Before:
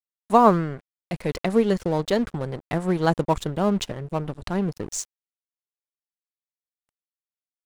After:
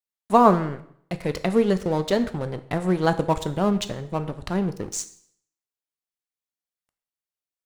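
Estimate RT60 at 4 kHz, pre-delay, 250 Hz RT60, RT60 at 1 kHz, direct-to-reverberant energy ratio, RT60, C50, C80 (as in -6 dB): 0.60 s, 5 ms, 0.65 s, 0.65 s, 10.5 dB, 0.65 s, 14.5 dB, 17.5 dB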